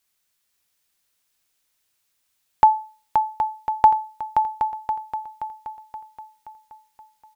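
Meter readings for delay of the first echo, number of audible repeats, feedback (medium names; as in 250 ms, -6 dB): 525 ms, 5, 51%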